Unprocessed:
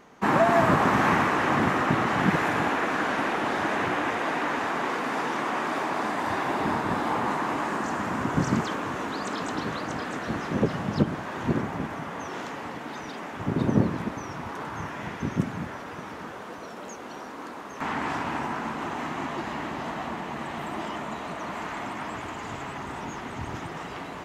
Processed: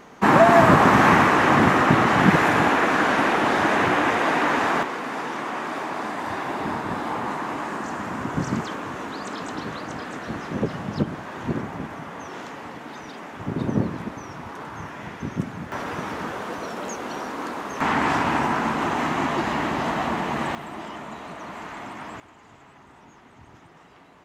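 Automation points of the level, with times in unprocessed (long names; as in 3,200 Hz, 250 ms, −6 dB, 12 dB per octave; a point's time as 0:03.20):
+6.5 dB
from 0:04.83 −1 dB
from 0:15.72 +8 dB
from 0:20.55 −2.5 dB
from 0:22.20 −15 dB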